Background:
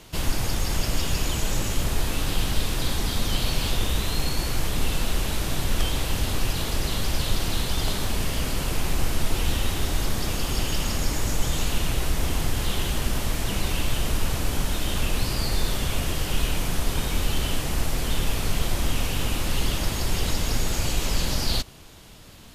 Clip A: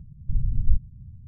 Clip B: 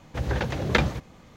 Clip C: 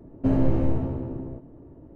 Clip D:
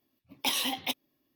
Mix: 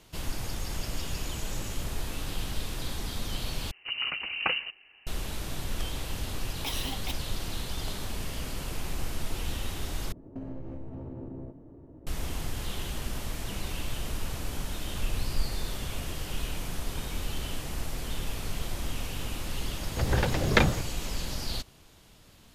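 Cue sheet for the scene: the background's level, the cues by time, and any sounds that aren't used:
background -9 dB
3.71 s: replace with B -7 dB + frequency inversion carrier 2.9 kHz
6.20 s: add D -6.5 dB
10.12 s: replace with C -3 dB + compression 8:1, threshold -32 dBFS
14.69 s: add A -10.5 dB
19.82 s: add B

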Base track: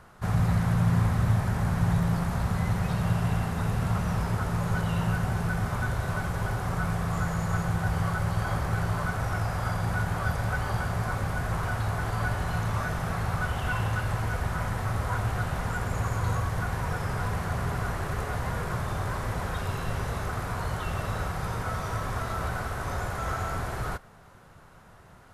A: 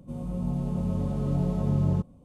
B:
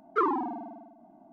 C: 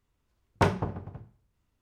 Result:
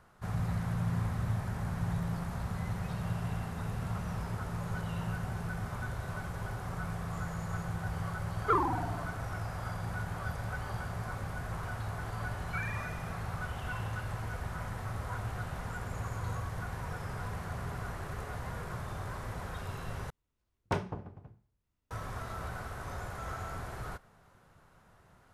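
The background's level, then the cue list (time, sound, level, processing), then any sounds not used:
base track -9 dB
8.32 s: add B -1.5 dB + high-pass 340 Hz
12.37 s: add B -14 dB + frequency inversion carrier 2.7 kHz
20.10 s: replace with C -8.5 dB
not used: A

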